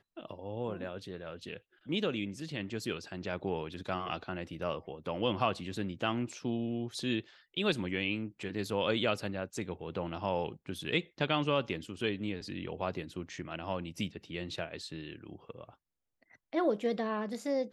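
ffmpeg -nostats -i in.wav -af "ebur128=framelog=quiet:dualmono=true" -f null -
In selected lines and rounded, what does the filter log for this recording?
Integrated loudness:
  I:         -32.6 LUFS
  Threshold: -43.0 LUFS
Loudness range:
  LRA:         5.5 LU
  Threshold: -52.9 LUFS
  LRA low:   -36.5 LUFS
  LRA high:  -31.0 LUFS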